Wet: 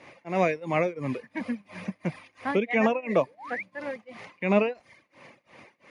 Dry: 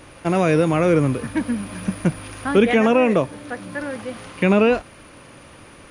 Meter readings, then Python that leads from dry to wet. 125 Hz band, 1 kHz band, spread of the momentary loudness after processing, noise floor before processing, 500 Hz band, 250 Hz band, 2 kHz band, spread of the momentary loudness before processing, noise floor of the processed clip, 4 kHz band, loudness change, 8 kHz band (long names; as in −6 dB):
−12.0 dB, −6.0 dB, 13 LU, −45 dBFS, −8.0 dB, −10.5 dB, −6.0 dB, 14 LU, −68 dBFS, −11.0 dB, −8.5 dB, below −15 dB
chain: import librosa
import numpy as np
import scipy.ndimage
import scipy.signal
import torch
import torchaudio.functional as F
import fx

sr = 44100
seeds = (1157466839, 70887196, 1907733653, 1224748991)

y = fx.spec_paint(x, sr, seeds[0], shape='rise', start_s=3.26, length_s=0.37, low_hz=380.0, high_hz=2500.0, level_db=-33.0)
y = fx.high_shelf(y, sr, hz=3900.0, db=-8.0)
y = fx.tremolo_shape(y, sr, shape='triangle', hz=2.9, depth_pct=90)
y = fx.cabinet(y, sr, low_hz=220.0, low_slope=12, high_hz=7300.0, hz=(300.0, 420.0, 1400.0, 2100.0, 3200.0), db=(-7, -4, -10, 8, -4))
y = fx.dereverb_blind(y, sr, rt60_s=0.76)